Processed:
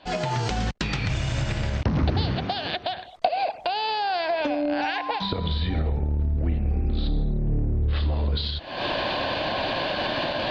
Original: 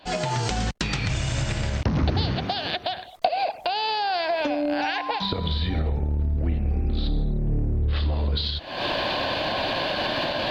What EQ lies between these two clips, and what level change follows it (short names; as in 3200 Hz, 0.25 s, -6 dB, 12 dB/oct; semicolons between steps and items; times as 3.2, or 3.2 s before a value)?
air absorption 78 m; 0.0 dB